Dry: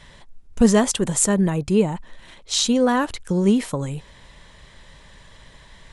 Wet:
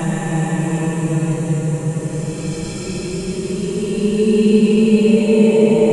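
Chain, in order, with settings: flange 1 Hz, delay 1.5 ms, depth 5.9 ms, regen +78%; two-slope reverb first 0.44 s, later 2.9 s, from -21 dB, DRR -3.5 dB; Paulstretch 19×, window 0.10 s, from 1.54 s; trim +3.5 dB

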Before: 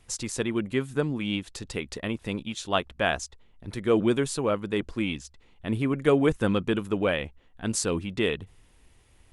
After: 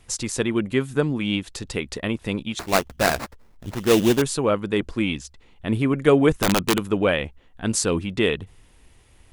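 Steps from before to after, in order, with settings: 2.59–4.22 s: sample-rate reducer 3.2 kHz, jitter 20%; 6.41–6.85 s: integer overflow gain 16.5 dB; trim +5 dB

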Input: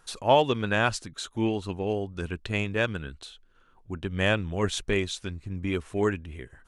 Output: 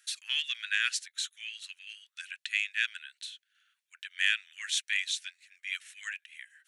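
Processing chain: steep high-pass 1.7 kHz 48 dB/octave; band-stop 4.9 kHz, Q 21; trim +2.5 dB

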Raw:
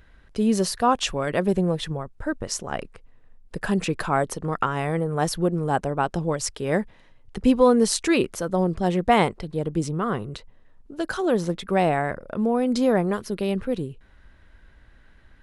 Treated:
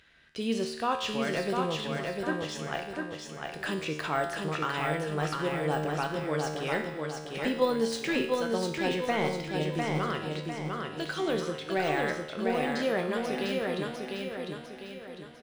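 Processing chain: frequency weighting D; de-esser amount 75%; peaking EQ 230 Hz -4 dB 0.23 oct; in parallel at -1 dB: level held to a coarse grid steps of 15 dB; on the sum: feedback comb 76 Hz, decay 0.82 s, harmonics all, mix 80%; on a send: feedback delay 701 ms, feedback 45%, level -3.5 dB

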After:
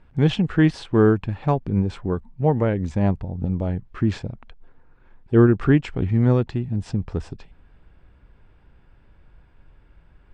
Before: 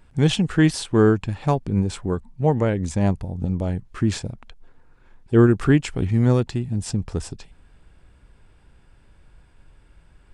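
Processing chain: Bessel low-pass 2.6 kHz, order 2

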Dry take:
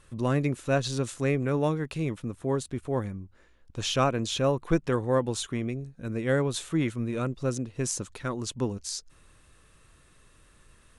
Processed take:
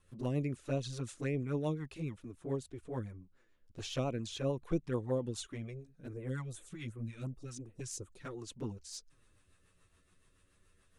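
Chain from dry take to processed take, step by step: 6.13–8.17 s: phase shifter stages 2, 2.7 Hz, lowest notch 380–4900 Hz; rotary cabinet horn 7 Hz; touch-sensitive flanger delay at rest 11.7 ms, full sweep at -22.5 dBFS; trim -6 dB

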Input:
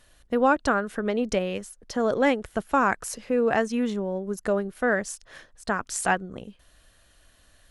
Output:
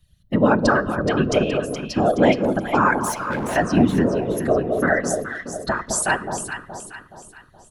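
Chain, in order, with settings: expander on every frequency bin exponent 1.5; comb 3.2 ms, depth 70%; in parallel at +3 dB: peak limiter -19.5 dBFS, peak gain reduction 10.5 dB; on the sum: whisper effect; 2.98–3.56 s: hard clipper -26 dBFS, distortion -15 dB; echo whose repeats swap between lows and highs 211 ms, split 1 kHz, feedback 65%, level -4.5 dB; on a send at -19 dB: reverberation RT60 0.95 s, pre-delay 5 ms

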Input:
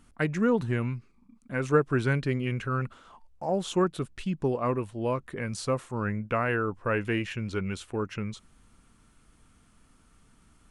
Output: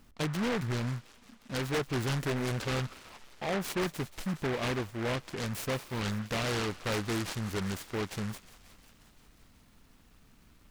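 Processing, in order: 2.20–2.80 s: peaking EQ 570 Hz +12 dB 0.92 oct; saturation -27 dBFS, distortion -8 dB; on a send: feedback echo behind a high-pass 178 ms, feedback 74%, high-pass 1.6 kHz, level -13.5 dB; on the sum: delay time shaken by noise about 1.3 kHz, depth 0.17 ms

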